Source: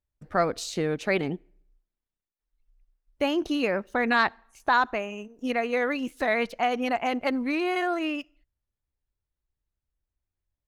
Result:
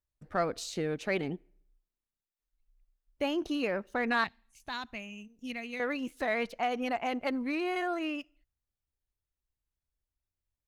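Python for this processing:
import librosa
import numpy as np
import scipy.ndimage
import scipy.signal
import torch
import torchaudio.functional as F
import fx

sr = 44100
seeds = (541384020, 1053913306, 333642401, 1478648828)

p1 = fx.band_shelf(x, sr, hz=710.0, db=-13.5, octaves=2.8, at=(4.24, 5.8))
p2 = 10.0 ** (-23.5 / 20.0) * np.tanh(p1 / 10.0 ** (-23.5 / 20.0))
p3 = p1 + (p2 * librosa.db_to_amplitude(-9.0))
y = p3 * librosa.db_to_amplitude(-7.5)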